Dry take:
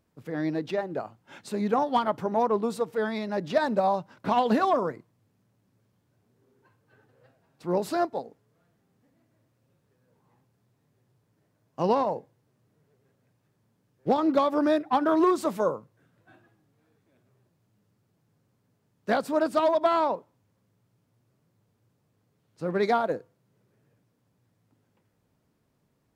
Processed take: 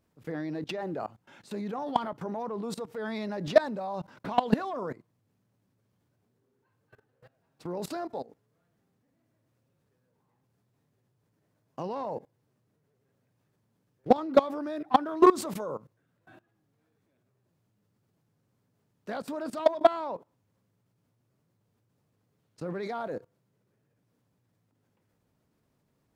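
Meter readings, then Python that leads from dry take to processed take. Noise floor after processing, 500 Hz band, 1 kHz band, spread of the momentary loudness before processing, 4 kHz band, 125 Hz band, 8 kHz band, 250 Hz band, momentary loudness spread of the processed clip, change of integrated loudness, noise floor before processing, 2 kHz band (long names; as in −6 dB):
−75 dBFS, −3.0 dB, −4.0 dB, 13 LU, −2.5 dB, −2.5 dB, 0.0 dB, −4.0 dB, 18 LU, −3.0 dB, −72 dBFS, −5.0 dB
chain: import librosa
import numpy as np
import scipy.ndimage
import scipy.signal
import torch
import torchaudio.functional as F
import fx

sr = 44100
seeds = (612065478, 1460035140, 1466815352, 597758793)

y = fx.level_steps(x, sr, step_db=20)
y = y * librosa.db_to_amplitude(6.0)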